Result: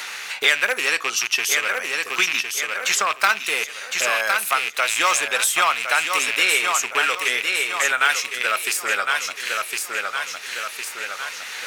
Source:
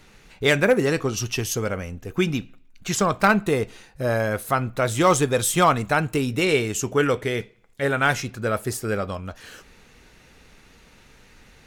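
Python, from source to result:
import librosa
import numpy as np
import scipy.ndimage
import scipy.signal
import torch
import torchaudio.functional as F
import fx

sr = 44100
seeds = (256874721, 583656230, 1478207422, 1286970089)

y = fx.rattle_buzz(x, sr, strikes_db=-29.0, level_db=-19.0)
y = scipy.signal.sosfilt(scipy.signal.butter(2, 1300.0, 'highpass', fs=sr, output='sos'), y)
y = fx.echo_feedback(y, sr, ms=1059, feedback_pct=31, wet_db=-7.5)
y = fx.band_squash(y, sr, depth_pct=70)
y = y * librosa.db_to_amplitude(7.0)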